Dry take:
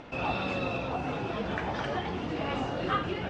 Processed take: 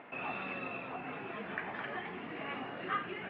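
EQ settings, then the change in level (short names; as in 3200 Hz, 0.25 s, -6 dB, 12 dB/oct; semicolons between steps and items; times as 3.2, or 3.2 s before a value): speaker cabinet 270–2200 Hz, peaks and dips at 310 Hz -6 dB, 520 Hz -7 dB, 890 Hz -4 dB, 1400 Hz -5 dB; tilt shelf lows -3.5 dB; dynamic EQ 720 Hz, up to -6 dB, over -47 dBFS, Q 0.91; 0.0 dB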